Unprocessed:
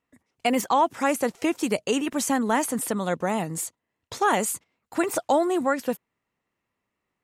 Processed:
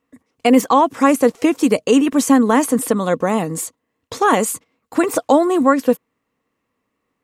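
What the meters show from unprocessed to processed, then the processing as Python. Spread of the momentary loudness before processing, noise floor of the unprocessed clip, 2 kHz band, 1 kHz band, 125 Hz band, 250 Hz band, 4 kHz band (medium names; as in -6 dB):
10 LU, -82 dBFS, +5.5 dB, +7.0 dB, +7.0 dB, +11.5 dB, +5.0 dB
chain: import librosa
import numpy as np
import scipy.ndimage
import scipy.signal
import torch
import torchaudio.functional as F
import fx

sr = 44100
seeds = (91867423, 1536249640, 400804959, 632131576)

y = fx.small_body(x, sr, hz=(270.0, 470.0, 1100.0), ring_ms=40, db=9)
y = F.gain(torch.from_numpy(y), 5.0).numpy()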